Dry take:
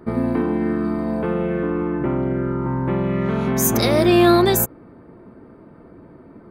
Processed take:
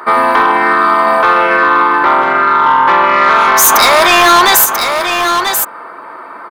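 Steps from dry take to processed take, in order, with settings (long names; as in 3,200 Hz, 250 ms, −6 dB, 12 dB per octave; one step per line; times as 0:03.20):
high-pass with resonance 1,100 Hz, resonance Q 2.3
soft clipping −22 dBFS, distortion −7 dB
on a send: single-tap delay 989 ms −10 dB
on the sum: boost into a limiter +23.5 dB
level −1 dB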